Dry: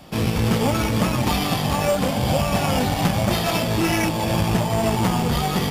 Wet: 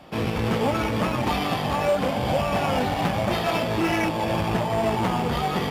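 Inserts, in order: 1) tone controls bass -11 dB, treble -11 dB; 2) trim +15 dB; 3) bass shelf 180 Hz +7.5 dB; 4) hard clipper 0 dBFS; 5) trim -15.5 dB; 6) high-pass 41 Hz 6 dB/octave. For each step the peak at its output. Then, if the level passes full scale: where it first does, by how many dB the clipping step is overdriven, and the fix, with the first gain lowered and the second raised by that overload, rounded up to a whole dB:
-10.5 dBFS, +4.5 dBFS, +5.5 dBFS, 0.0 dBFS, -15.5 dBFS, -13.5 dBFS; step 2, 5.5 dB; step 2 +9 dB, step 5 -9.5 dB

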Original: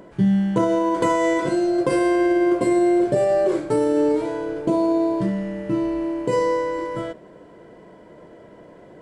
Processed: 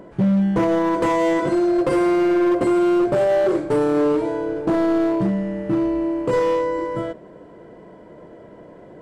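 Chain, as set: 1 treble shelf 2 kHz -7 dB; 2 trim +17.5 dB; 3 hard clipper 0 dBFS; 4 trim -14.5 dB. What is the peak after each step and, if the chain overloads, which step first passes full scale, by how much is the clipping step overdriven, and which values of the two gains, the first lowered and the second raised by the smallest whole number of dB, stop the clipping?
-8.5 dBFS, +9.0 dBFS, 0.0 dBFS, -14.5 dBFS; step 2, 9.0 dB; step 2 +8.5 dB, step 4 -5.5 dB

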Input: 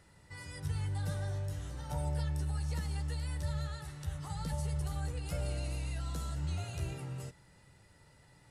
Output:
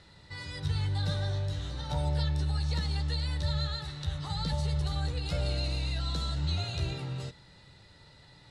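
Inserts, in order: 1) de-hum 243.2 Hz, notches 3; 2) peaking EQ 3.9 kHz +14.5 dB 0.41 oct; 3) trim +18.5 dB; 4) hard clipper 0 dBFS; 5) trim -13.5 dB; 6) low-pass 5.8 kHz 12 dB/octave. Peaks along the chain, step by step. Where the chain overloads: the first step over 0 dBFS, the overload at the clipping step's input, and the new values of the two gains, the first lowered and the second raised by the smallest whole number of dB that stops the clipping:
-24.5 dBFS, -23.5 dBFS, -5.0 dBFS, -5.0 dBFS, -18.5 dBFS, -19.0 dBFS; nothing clips

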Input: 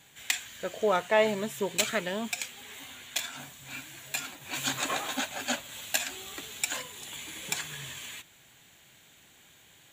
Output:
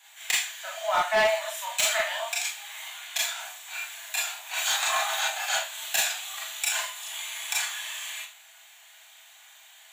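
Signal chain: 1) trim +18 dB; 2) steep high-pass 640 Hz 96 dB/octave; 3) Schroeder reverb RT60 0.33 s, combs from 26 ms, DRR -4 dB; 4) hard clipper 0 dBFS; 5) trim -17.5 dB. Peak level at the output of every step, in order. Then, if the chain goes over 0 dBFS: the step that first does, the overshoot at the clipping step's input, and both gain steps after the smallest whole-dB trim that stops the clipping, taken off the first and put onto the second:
+8.0 dBFS, +8.0 dBFS, +9.5 dBFS, 0.0 dBFS, -17.5 dBFS; step 1, 9.5 dB; step 1 +8 dB, step 5 -7.5 dB

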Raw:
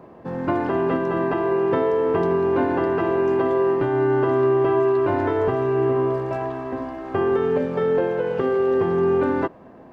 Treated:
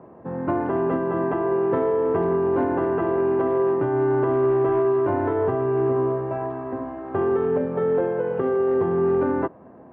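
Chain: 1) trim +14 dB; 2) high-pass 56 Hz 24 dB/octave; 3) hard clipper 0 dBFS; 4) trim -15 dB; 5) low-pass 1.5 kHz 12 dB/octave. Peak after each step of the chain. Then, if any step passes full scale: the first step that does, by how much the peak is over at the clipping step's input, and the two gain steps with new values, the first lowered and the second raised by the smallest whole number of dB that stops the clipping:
+4.0 dBFS, +4.0 dBFS, 0.0 dBFS, -15.0 dBFS, -14.5 dBFS; step 1, 4.0 dB; step 1 +10 dB, step 4 -11 dB

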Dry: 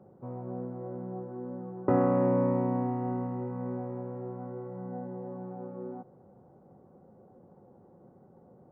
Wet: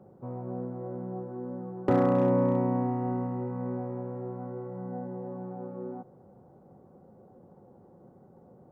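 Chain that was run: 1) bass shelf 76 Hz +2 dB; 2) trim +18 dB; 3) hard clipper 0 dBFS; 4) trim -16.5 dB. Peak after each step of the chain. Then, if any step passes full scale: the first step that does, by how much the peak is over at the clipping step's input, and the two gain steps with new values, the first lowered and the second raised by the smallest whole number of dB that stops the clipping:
-12.5 dBFS, +5.5 dBFS, 0.0 dBFS, -16.5 dBFS; step 2, 5.5 dB; step 2 +12 dB, step 4 -10.5 dB

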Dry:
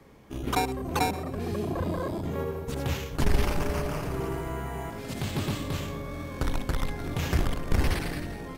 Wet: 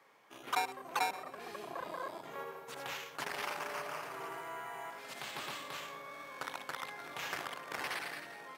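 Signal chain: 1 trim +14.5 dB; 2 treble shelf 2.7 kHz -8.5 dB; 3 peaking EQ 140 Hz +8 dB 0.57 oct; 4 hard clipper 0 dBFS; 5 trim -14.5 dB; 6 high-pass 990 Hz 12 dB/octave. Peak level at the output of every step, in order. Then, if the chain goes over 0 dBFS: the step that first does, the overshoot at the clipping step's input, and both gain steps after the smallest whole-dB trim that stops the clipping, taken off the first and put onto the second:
+3.0 dBFS, +3.0 dBFS, +4.5 dBFS, 0.0 dBFS, -14.5 dBFS, -19.0 dBFS; step 1, 4.5 dB; step 1 +9.5 dB, step 5 -9.5 dB

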